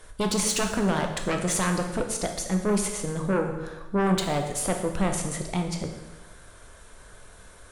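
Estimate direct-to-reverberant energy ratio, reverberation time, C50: 3.5 dB, 1.1 s, 6.5 dB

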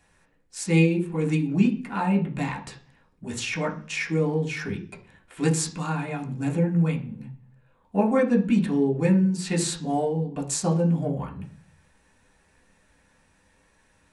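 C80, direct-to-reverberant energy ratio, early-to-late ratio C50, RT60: 16.5 dB, -2.5 dB, 12.0 dB, 0.45 s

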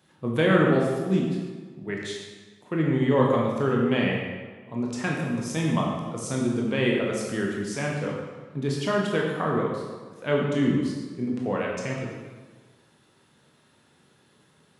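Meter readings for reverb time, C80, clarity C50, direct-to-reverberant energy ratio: 1.4 s, 3.0 dB, 1.0 dB, -2.5 dB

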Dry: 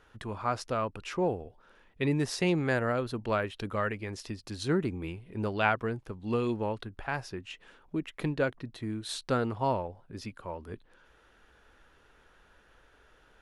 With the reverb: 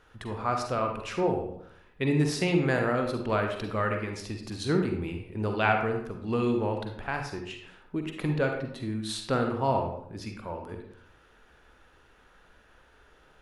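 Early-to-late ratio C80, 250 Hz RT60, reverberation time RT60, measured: 8.5 dB, 0.75 s, 0.65 s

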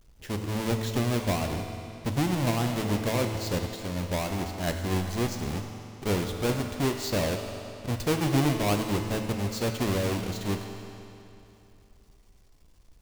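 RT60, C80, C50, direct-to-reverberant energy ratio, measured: 2.9 s, 6.0 dB, 5.0 dB, 4.0 dB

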